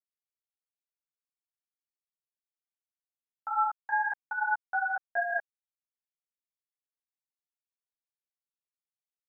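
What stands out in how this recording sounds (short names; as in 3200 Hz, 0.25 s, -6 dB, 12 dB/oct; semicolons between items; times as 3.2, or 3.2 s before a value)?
tremolo saw down 5.1 Hz, depth 35%; a quantiser's noise floor 12-bit, dither none; a shimmering, thickened sound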